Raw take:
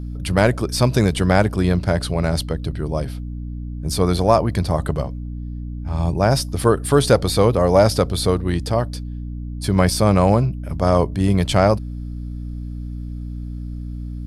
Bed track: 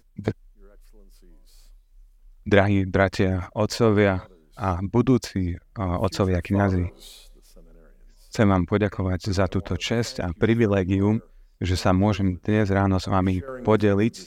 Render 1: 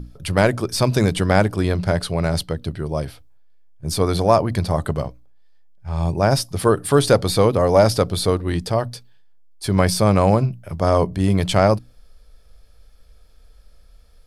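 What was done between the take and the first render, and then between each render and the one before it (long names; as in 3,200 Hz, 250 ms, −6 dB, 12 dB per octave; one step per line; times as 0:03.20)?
mains-hum notches 60/120/180/240/300 Hz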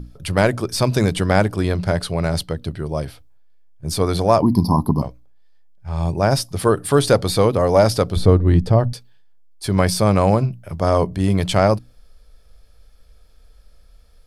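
0:04.42–0:05.02: drawn EQ curve 100 Hz 0 dB, 260 Hz +14 dB, 580 Hz −11 dB, 1,000 Hz +13 dB, 1,400 Hz −25 dB, 2,200 Hz −21 dB, 3,500 Hz −15 dB, 5,200 Hz +7 dB, 7,600 Hz −25 dB, 11,000 Hz +8 dB
0:08.16–0:08.93: spectral tilt −3 dB per octave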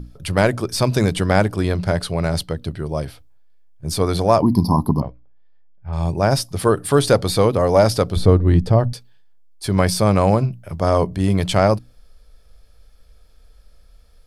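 0:05.00–0:05.93: high-frequency loss of the air 320 metres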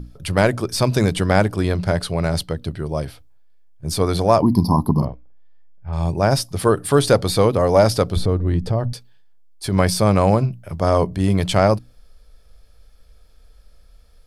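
0:04.91–0:05.89: double-tracking delay 46 ms −4.5 dB
0:08.22–0:09.73: downward compressor 2 to 1, threshold −19 dBFS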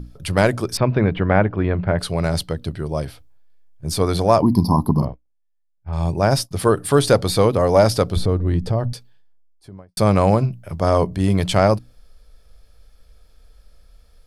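0:00.77–0:01.99: low-pass filter 2,500 Hz 24 dB per octave
0:04.96–0:06.51: downward expander −30 dBFS
0:08.89–0:09.97: fade out and dull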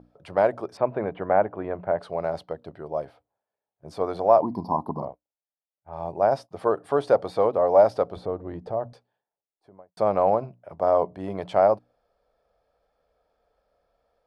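resonant band-pass 700 Hz, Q 1.9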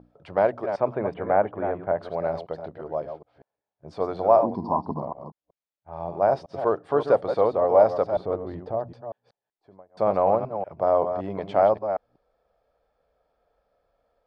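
delay that plays each chunk backwards 190 ms, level −8 dB
high-frequency loss of the air 110 metres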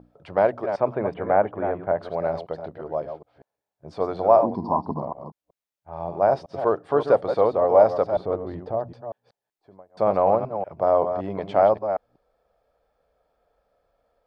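level +1.5 dB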